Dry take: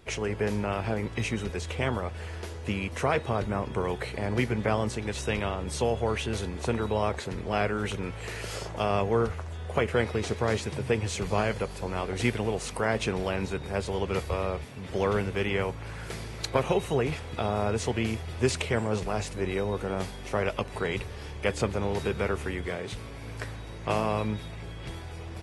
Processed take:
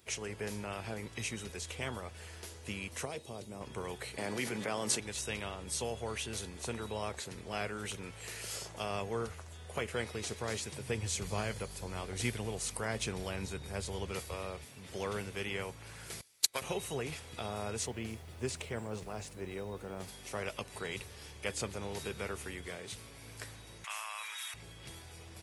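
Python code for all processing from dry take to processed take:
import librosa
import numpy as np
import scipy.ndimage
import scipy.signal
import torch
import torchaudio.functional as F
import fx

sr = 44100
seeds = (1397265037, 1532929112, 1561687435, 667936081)

y = fx.chain(x, sr, fx.highpass(hz=200.0, slope=6),
    fx.peak_eq(hz=1500.0, db=-15.0, octaves=1.6), at=(3.05, 3.61))
y = fx.chain(y, sr, fx.highpass(hz=180.0, slope=12),
    fx.env_flatten(amount_pct=70), at=(4.18, 5.0))
y = fx.chain(y, sr, fx.low_shelf(hz=120.0, db=9.5),
    fx.notch(hz=2700.0, q=27.0), at=(10.88, 14.12))
y = fx.chain(y, sr, fx.tilt_eq(slope=3.5),
    fx.upward_expand(threshold_db=-39.0, expansion=2.5), at=(16.21, 16.62))
y = fx.high_shelf(y, sr, hz=2000.0, db=-9.5, at=(17.85, 20.07), fade=0.02)
y = fx.dmg_noise_colour(y, sr, seeds[0], colour='brown', level_db=-47.0, at=(17.85, 20.07), fade=0.02)
y = fx.chain(y, sr, fx.highpass(hz=1100.0, slope=24),
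    fx.peak_eq(hz=4600.0, db=-10.5, octaves=0.34),
    fx.env_flatten(amount_pct=70), at=(23.84, 24.54))
y = scipy.signal.sosfilt(scipy.signal.butter(2, 57.0, 'highpass', fs=sr, output='sos'), y)
y = librosa.effects.preemphasis(y, coef=0.8, zi=[0.0])
y = y * 10.0 ** (2.0 / 20.0)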